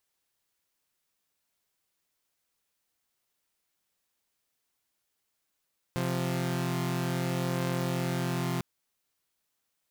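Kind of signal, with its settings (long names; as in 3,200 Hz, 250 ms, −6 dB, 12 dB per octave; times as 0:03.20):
held notes C3/F3 saw, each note −28.5 dBFS 2.65 s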